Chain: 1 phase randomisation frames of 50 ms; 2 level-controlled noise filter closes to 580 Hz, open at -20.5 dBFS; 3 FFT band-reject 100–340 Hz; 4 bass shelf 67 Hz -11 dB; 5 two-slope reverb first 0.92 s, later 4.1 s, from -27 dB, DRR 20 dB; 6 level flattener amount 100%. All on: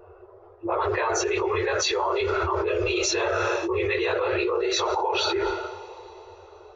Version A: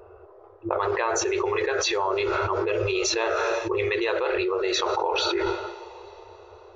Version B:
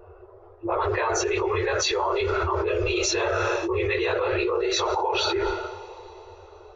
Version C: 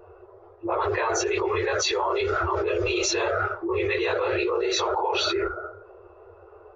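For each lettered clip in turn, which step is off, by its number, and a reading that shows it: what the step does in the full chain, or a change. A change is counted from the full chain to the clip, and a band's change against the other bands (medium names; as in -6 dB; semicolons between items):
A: 1, crest factor change +3.5 dB; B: 4, 125 Hz band +3.0 dB; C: 5, momentary loudness spread change -3 LU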